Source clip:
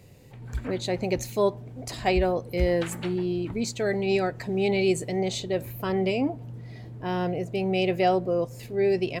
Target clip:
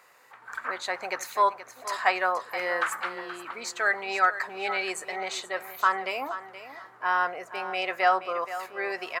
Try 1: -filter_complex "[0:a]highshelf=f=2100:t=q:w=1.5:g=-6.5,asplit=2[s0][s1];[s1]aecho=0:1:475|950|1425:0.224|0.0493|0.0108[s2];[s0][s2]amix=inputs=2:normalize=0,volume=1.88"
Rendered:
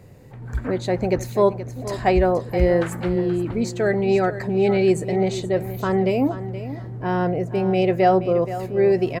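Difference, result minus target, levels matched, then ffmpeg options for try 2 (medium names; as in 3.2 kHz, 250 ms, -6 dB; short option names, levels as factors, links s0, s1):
1 kHz band -6.5 dB
-filter_complex "[0:a]highpass=f=1200:t=q:w=2.8,highshelf=f=2100:t=q:w=1.5:g=-6.5,asplit=2[s0][s1];[s1]aecho=0:1:475|950|1425:0.224|0.0493|0.0108[s2];[s0][s2]amix=inputs=2:normalize=0,volume=1.88"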